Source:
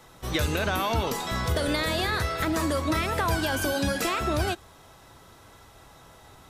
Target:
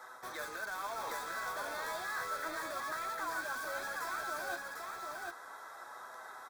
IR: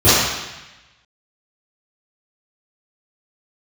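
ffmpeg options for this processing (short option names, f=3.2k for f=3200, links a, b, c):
-filter_complex "[0:a]highpass=730,highshelf=f=2k:t=q:w=3:g=-7,areverse,acompressor=threshold=-38dB:ratio=6,areverse,flanger=delay=7.8:depth=3.9:regen=37:speed=0.32:shape=sinusoidal,asplit=2[a][b];[b]aeval=exprs='(mod(178*val(0)+1,2)-1)/178':c=same,volume=-5dB[c];[a][c]amix=inputs=2:normalize=0,asuperstop=centerf=2900:order=4:qfactor=5.9,aecho=1:1:749:0.668,volume=3dB"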